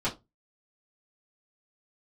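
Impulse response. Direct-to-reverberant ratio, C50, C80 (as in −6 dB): −11.0 dB, 15.0 dB, 24.5 dB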